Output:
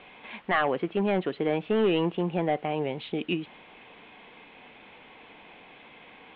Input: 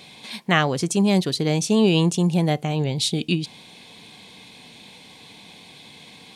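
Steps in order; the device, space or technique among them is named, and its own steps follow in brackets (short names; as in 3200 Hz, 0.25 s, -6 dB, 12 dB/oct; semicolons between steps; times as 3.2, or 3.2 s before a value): aircraft radio (BPF 340–2400 Hz; hard clip -18 dBFS, distortion -11 dB; white noise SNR 20 dB); steep low-pass 3200 Hz 48 dB/oct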